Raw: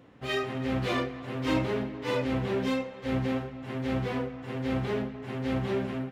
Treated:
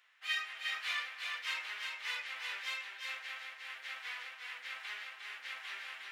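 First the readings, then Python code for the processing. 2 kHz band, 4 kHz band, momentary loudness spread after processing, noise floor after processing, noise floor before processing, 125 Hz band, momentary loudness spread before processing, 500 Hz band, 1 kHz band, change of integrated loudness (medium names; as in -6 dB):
0.0 dB, +0.5 dB, 8 LU, -53 dBFS, -44 dBFS, under -40 dB, 6 LU, -32.5 dB, -11.5 dB, -8.5 dB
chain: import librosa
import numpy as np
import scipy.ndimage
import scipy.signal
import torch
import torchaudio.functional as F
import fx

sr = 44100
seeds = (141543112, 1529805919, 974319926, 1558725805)

y = fx.octave_divider(x, sr, octaves=1, level_db=4.0)
y = fx.ladder_highpass(y, sr, hz=1400.0, resonance_pct=25)
y = y + 10.0 ** (-4.0 / 20.0) * np.pad(y, (int(357 * sr / 1000.0), 0))[:len(y)]
y = y * librosa.db_to_amplitude(3.5)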